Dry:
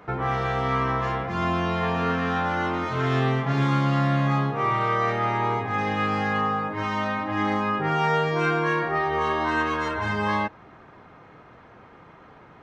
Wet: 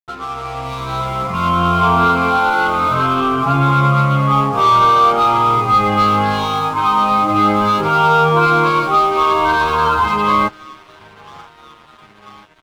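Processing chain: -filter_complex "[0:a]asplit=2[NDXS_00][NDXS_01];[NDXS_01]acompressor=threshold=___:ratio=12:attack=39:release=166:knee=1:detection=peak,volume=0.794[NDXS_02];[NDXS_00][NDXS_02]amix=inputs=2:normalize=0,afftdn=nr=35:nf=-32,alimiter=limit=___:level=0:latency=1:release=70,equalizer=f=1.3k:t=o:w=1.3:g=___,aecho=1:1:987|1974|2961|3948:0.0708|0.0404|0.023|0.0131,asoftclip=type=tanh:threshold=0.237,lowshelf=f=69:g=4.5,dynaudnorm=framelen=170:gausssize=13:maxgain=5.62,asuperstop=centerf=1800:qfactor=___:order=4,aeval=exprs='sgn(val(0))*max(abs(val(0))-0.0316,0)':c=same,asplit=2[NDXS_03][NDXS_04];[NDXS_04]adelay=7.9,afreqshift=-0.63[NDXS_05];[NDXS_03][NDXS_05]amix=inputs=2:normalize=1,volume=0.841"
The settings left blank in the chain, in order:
0.0251, 0.224, 9.5, 2.7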